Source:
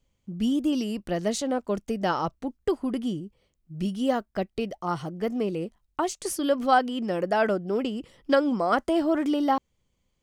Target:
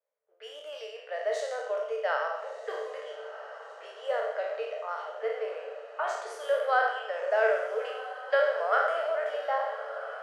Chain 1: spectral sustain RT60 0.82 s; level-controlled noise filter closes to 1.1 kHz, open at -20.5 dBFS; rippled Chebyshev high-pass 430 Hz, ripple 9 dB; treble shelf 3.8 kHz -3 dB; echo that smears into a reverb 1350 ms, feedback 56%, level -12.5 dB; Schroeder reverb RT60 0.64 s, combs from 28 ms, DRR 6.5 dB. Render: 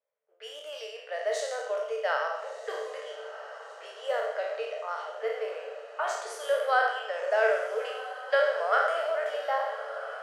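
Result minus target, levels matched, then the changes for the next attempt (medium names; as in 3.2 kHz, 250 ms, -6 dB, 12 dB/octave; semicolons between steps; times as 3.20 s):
8 kHz band +6.0 dB
change: treble shelf 3.8 kHz -11.5 dB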